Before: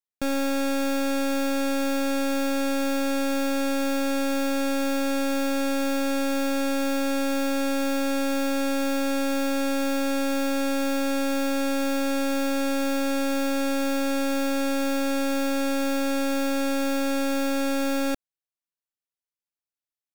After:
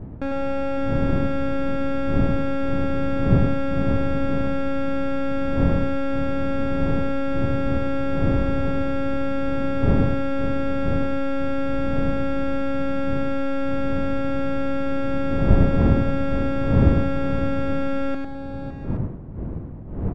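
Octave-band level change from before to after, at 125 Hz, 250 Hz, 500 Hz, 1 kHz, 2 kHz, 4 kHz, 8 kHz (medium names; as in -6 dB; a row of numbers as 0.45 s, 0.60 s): no reading, +1.0 dB, +1.5 dB, 0.0 dB, -3.0 dB, -9.0 dB, under -20 dB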